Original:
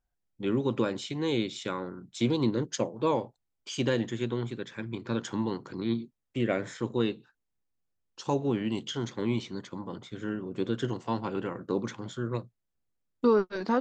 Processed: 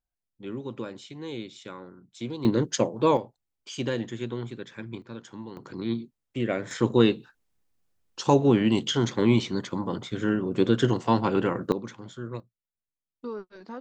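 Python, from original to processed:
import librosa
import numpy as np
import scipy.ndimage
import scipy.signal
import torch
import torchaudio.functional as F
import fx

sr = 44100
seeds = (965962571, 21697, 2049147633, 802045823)

y = fx.gain(x, sr, db=fx.steps((0.0, -7.5), (2.45, 5.5), (3.17, -1.5), (5.02, -9.5), (5.57, 0.5), (6.71, 8.5), (11.72, -3.5), (12.4, -13.0)))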